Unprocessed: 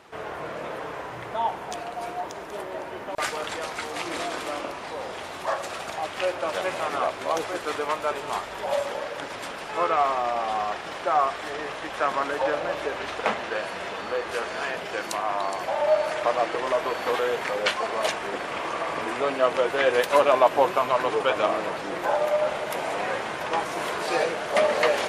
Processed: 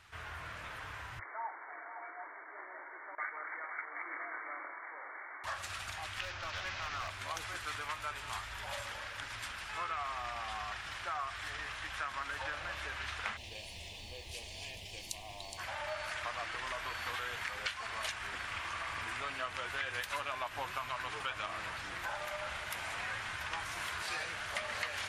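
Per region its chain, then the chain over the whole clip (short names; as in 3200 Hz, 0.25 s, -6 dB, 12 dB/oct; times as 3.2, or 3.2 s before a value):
1.19–5.44 brick-wall FIR band-pass 280–2300 Hz + echo 0.505 s -12 dB
6.21–7.09 CVSD 32 kbps + hard clip -22 dBFS
13.36–15.57 added noise pink -58 dBFS + Butterworth band-stop 1400 Hz, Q 0.66
whole clip: EQ curve 100 Hz 0 dB, 140 Hz -16 dB, 480 Hz -29 dB, 1500 Hz -9 dB; compressor 4:1, threshold -39 dBFS; gain +4 dB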